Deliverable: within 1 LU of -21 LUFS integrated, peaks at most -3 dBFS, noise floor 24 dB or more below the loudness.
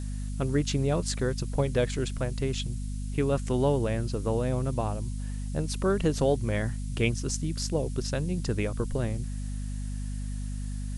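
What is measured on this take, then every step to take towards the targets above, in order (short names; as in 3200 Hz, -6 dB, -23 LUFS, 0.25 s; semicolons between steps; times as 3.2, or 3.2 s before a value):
hum 50 Hz; harmonics up to 250 Hz; hum level -31 dBFS; noise floor -34 dBFS; noise floor target -54 dBFS; loudness -30.0 LUFS; peak -12.5 dBFS; loudness target -21.0 LUFS
-> notches 50/100/150/200/250 Hz; noise print and reduce 20 dB; gain +9 dB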